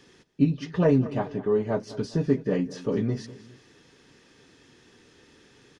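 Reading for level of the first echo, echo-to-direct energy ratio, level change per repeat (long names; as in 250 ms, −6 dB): −17.5 dB, −16.5 dB, −6.0 dB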